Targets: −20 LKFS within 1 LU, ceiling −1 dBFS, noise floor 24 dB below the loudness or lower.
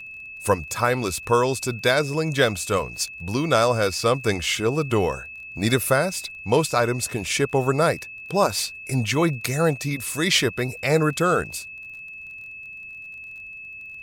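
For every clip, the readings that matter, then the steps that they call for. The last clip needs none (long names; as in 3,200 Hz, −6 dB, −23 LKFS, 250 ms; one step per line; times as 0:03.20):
crackle rate 23 per second; interfering tone 2,600 Hz; level of the tone −36 dBFS; integrated loudness −22.5 LKFS; sample peak −5.5 dBFS; target loudness −20.0 LKFS
→ click removal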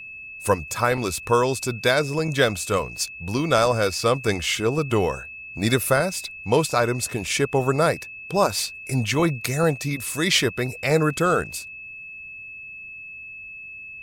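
crackle rate 0.14 per second; interfering tone 2,600 Hz; level of the tone −36 dBFS
→ notch filter 2,600 Hz, Q 30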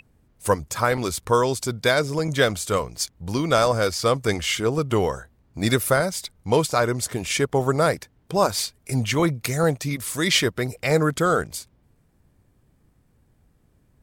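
interfering tone none found; integrated loudness −22.5 LKFS; sample peak −5.5 dBFS; target loudness −20.0 LKFS
→ level +2.5 dB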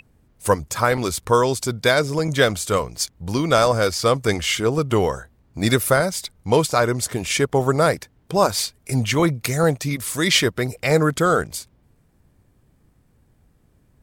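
integrated loudness −20.0 LKFS; sample peak −3.0 dBFS; background noise floor −61 dBFS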